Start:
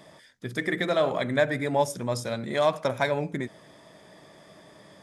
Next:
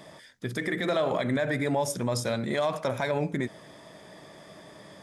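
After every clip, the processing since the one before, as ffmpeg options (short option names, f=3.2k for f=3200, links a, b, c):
-af "alimiter=limit=-21dB:level=0:latency=1:release=41,volume=3dB"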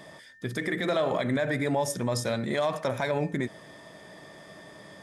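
-af "aeval=exprs='val(0)+0.00224*sin(2*PI*1800*n/s)':c=same"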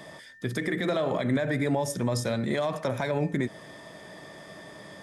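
-filter_complex "[0:a]acrossover=split=400[a][b];[b]acompressor=threshold=-38dB:ratio=1.5[c];[a][c]amix=inputs=2:normalize=0,volume=2.5dB"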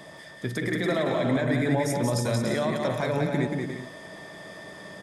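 -af "aecho=1:1:180|288|352.8|391.7|415:0.631|0.398|0.251|0.158|0.1"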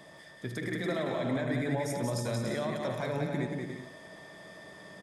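-af "aecho=1:1:76:0.251,volume=-7dB"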